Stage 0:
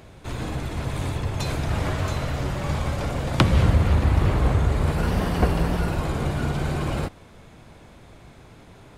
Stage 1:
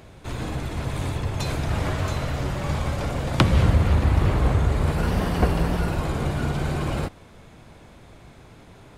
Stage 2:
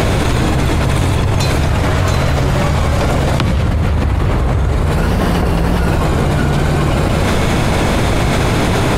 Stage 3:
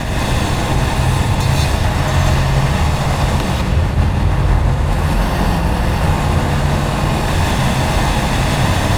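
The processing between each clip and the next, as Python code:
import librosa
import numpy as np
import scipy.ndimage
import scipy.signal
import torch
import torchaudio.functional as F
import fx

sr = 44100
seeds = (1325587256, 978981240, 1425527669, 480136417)

y1 = x
y2 = y1 + 10.0 ** (-18.0 / 20.0) * np.pad(y1, (int(172 * sr / 1000.0), 0))[:len(y1)]
y2 = fx.env_flatten(y2, sr, amount_pct=100)
y3 = fx.lower_of_two(y2, sr, delay_ms=1.1)
y3 = fx.rev_gated(y3, sr, seeds[0], gate_ms=220, shape='rising', drr_db=-4.0)
y3 = y3 * 10.0 ** (-5.5 / 20.0)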